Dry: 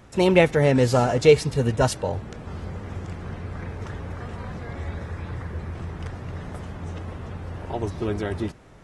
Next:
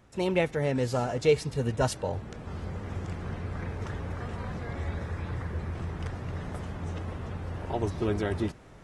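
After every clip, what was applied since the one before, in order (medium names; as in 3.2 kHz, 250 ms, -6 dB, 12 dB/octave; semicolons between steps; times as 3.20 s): gain riding within 4 dB 2 s; trim -5.5 dB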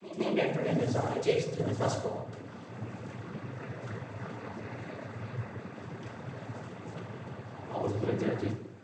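pre-echo 164 ms -13.5 dB; plate-style reverb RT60 0.78 s, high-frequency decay 0.6×, DRR 1.5 dB; noise-vocoded speech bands 16; trim -5 dB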